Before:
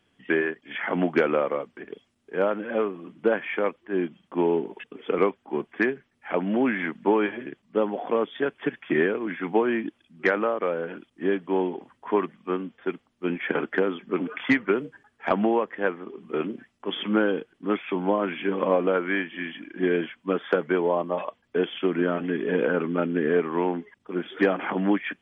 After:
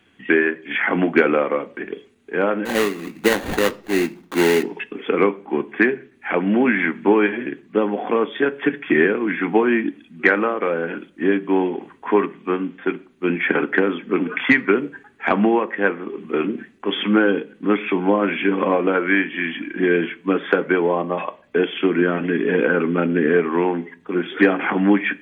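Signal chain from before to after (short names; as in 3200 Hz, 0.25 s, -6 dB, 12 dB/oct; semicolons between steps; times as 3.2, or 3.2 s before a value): in parallel at -0.5 dB: compressor, threshold -33 dBFS, peak gain reduction 16.5 dB; 2.65–4.63 on the sum: sample-rate reducer 2400 Hz, jitter 20%; reverb RT60 0.45 s, pre-delay 3 ms, DRR 11.5 dB; gain +1.5 dB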